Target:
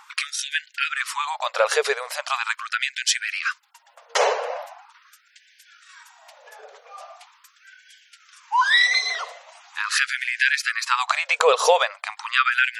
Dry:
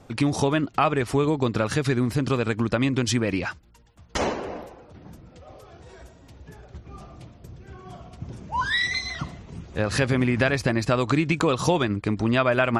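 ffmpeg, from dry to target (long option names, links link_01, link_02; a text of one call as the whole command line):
ffmpeg -i in.wav -filter_complex "[0:a]acrossover=split=130|2300[link_01][link_02][link_03];[link_01]agate=range=-23dB:threshold=-50dB:ratio=16:detection=peak[link_04];[link_02]acompressor=mode=upward:threshold=-44dB:ratio=2.5[link_05];[link_04][link_05][link_03]amix=inputs=3:normalize=0,lowshelf=frequency=93:gain=7,afftfilt=real='re*gte(b*sr/1024,420*pow(1500/420,0.5+0.5*sin(2*PI*0.41*pts/sr)))':imag='im*gte(b*sr/1024,420*pow(1500/420,0.5+0.5*sin(2*PI*0.41*pts/sr)))':win_size=1024:overlap=0.75,volume=7dB" out.wav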